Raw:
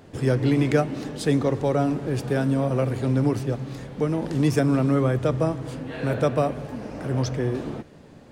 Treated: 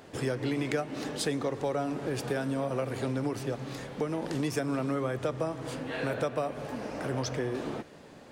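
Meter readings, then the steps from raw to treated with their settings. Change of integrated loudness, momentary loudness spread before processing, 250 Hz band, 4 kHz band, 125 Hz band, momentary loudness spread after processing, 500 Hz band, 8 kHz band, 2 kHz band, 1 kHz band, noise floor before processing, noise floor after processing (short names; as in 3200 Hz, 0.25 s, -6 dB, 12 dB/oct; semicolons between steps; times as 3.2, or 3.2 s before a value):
-8.5 dB, 11 LU, -9.5 dB, -2.0 dB, -12.5 dB, 6 LU, -7.0 dB, -1.5 dB, -3.5 dB, -5.5 dB, -48 dBFS, -51 dBFS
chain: low shelf 260 Hz -12 dB; compressor 4:1, threshold -30 dBFS, peak gain reduction 10 dB; gain +2 dB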